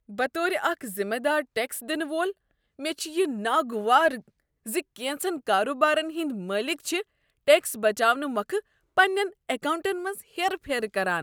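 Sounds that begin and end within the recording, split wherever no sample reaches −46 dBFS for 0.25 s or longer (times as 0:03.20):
0:02.79–0:04.28
0:04.66–0:07.02
0:07.47–0:08.60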